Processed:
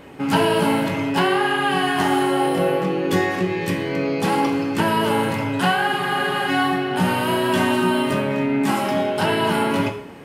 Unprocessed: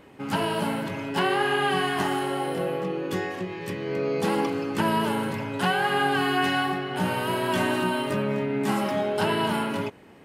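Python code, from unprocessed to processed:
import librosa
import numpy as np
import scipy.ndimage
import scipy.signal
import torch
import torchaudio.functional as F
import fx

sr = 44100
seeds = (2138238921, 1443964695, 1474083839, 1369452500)

y = fx.rider(x, sr, range_db=4, speed_s=0.5)
y = fx.rev_plate(y, sr, seeds[0], rt60_s=0.65, hf_ratio=0.9, predelay_ms=0, drr_db=5.5)
y = fx.spec_freeze(y, sr, seeds[1], at_s=5.89, hold_s=0.61)
y = y * 10.0 ** (5.0 / 20.0)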